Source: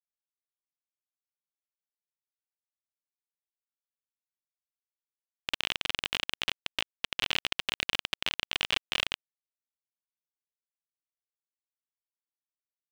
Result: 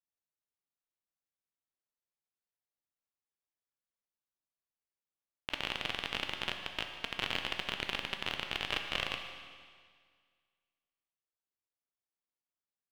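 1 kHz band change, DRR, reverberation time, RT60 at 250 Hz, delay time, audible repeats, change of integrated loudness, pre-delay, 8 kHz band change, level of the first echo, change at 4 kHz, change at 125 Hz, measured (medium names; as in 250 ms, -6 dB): -0.5 dB, 4.5 dB, 1.9 s, 1.9 s, 149 ms, 1, -4.5 dB, 11 ms, -8.5 dB, -16.5 dB, -5.5 dB, +1.0 dB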